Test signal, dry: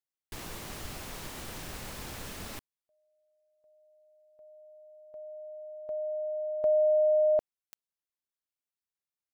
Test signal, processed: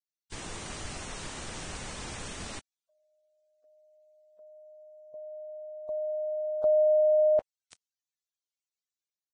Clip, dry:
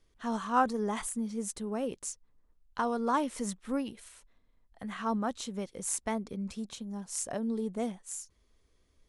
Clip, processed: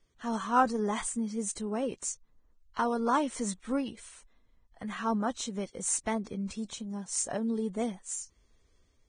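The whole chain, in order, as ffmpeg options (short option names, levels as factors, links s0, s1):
-af "dynaudnorm=f=120:g=5:m=1.41,volume=0.841" -ar 22050 -c:a libvorbis -b:a 16k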